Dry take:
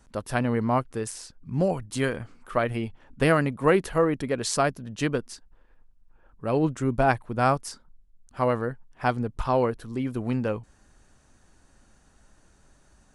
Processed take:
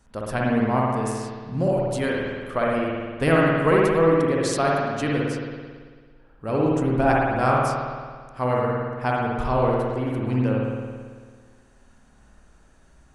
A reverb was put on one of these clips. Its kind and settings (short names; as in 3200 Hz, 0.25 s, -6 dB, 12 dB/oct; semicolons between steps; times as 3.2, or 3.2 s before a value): spring tank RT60 1.7 s, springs 55 ms, chirp 55 ms, DRR -3.5 dB; gain -1.5 dB